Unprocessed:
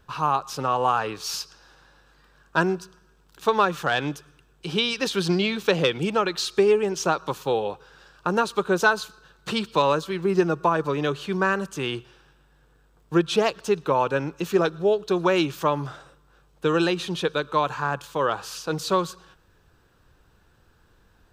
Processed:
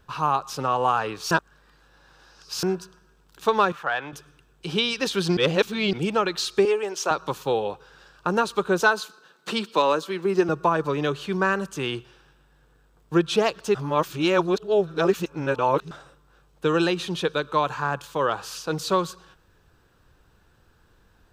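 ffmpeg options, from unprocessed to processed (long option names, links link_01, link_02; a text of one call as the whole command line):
ffmpeg -i in.wav -filter_complex "[0:a]asettb=1/sr,asplit=3[link_01][link_02][link_03];[link_01]atrim=end=3.724[link_04];[link_02]atrim=start=3.72:end=4.13,asetpts=PTS-STARTPTS,afade=type=in:duration=0.004:curve=qsin,afade=type=out:start_time=0.406:duration=0.004:curve=qsin,acrossover=split=580 2500:gain=0.2 1 0.178[link_05][link_06][link_07];[link_05][link_06][link_07]amix=inputs=3:normalize=0[link_08];[link_03]atrim=start=4.126[link_09];[link_04][link_08]acrossfade=duration=0.004:curve1=hsin:curve2=qsin[link_10];[link_10][link_09]acrossfade=duration=0.004:curve1=qsin:curve2=hsin,asettb=1/sr,asplit=3[link_11][link_12][link_13];[link_11]atrim=end=6.654[link_14];[link_12]atrim=start=6.65:end=7.11,asetpts=PTS-STARTPTS,afade=type=in:duration=0.004:curve=qsin,afade=type=out:start_time=0.456:duration=0.004:curve=qsin,highpass=460[link_15];[link_13]atrim=start=7.106[link_16];[link_14][link_15]acrossfade=duration=0.004:curve1=hsin:curve2=qsin[link_17];[link_17][link_16]acrossfade=duration=0.004:curve1=qsin:curve2=hsin,asettb=1/sr,asplit=3[link_18][link_19][link_20];[link_18]atrim=end=8.824[link_21];[link_19]atrim=start=8.82:end=10.49,asetpts=PTS-STARTPTS,afade=type=in:duration=0.004:curve=qsin,afade=type=out:start_time=1.666:duration=0.004:curve=qsin,highpass=frequency=200:width=0.5412,highpass=frequency=200:width=1.3066[link_22];[link_20]atrim=start=10.486[link_23];[link_21][link_22]acrossfade=duration=0.004:curve1=hsin:curve2=qsin[link_24];[link_24][link_23]acrossfade=duration=0.004:curve1=qsin:curve2=hsin,asplit=7[link_25][link_26][link_27][link_28][link_29][link_30][link_31];[link_25]atrim=end=1.312[link_32];[link_26]atrim=start=1.308:end=2.632,asetpts=PTS-STARTPTS,areverse[link_33];[link_27]atrim=start=2.628:end=5.372[link_34];[link_28]atrim=start=5.368:end=5.932,asetpts=PTS-STARTPTS,areverse[link_35];[link_29]atrim=start=5.928:end=13.752[link_36];[link_30]atrim=start=13.748:end=15.912,asetpts=PTS-STARTPTS,areverse[link_37];[link_31]atrim=start=15.908[link_38];[link_32][link_33]acrossfade=duration=0.004:curve1=hsin:curve2=hsin[link_39];[link_39][link_34]acrossfade=duration=0.004:curve1=hsin:curve2=hsin[link_40];[link_40][link_35]acrossfade=duration=0.004:curve1=hsin:curve2=hsin[link_41];[link_41][link_36]acrossfade=duration=0.004:curve1=hsin:curve2=hsin[link_42];[link_42][link_37]acrossfade=duration=0.004:curve1=hsin:curve2=hsin[link_43];[link_43][link_38]acrossfade=duration=0.004:curve1=hsin:curve2=hsin" out.wav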